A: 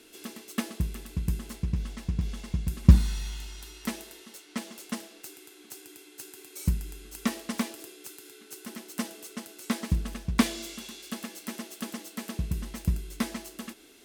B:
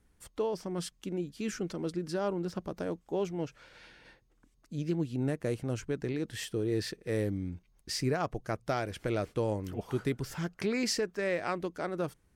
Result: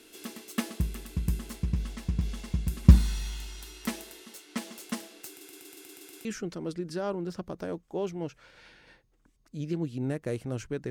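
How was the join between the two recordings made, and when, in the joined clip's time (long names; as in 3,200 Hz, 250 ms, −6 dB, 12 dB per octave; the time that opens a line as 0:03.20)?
A
0:05.29: stutter in place 0.12 s, 8 plays
0:06.25: continue with B from 0:01.43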